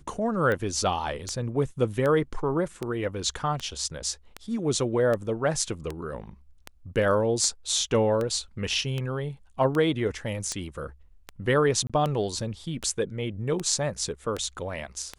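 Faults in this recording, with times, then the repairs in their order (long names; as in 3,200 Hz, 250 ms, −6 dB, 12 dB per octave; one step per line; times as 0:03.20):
scratch tick 78 rpm −17 dBFS
0:11.87–0:11.90: drop-out 26 ms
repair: click removal
repair the gap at 0:11.87, 26 ms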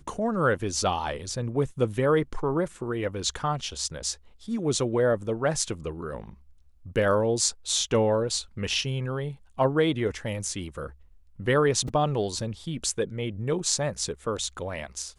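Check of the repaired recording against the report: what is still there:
none of them is left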